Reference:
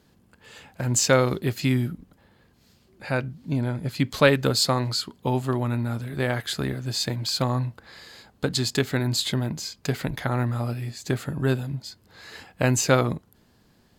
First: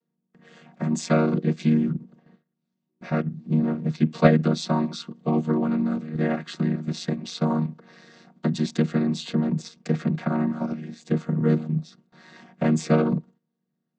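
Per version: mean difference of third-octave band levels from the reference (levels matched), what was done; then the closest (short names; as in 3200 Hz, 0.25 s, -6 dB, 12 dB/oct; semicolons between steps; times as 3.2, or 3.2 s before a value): 8.5 dB: chord vocoder minor triad, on D#3; gate with hold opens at -48 dBFS; in parallel at +1 dB: level quantiser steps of 15 dB; on the sum: gain -1.5 dB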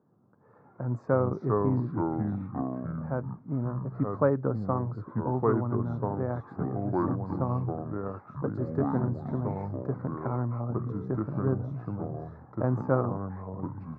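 12.5 dB: echoes that change speed 0.118 s, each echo -4 st, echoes 3; elliptic band-pass 110–1200 Hz, stop band 40 dB; air absorption 94 m; gain -5 dB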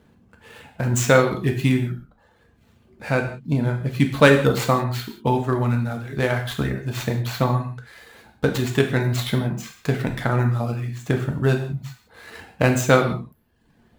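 4.5 dB: median filter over 9 samples; reverb removal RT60 0.81 s; non-linear reverb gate 0.21 s falling, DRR 3 dB; gain +4 dB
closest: third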